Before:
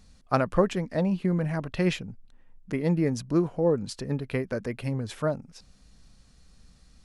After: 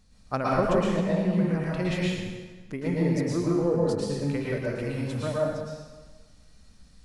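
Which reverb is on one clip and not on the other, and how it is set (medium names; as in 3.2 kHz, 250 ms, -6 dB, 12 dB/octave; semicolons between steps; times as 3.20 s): plate-style reverb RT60 1.3 s, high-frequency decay 0.9×, pre-delay 100 ms, DRR -6 dB; trim -5.5 dB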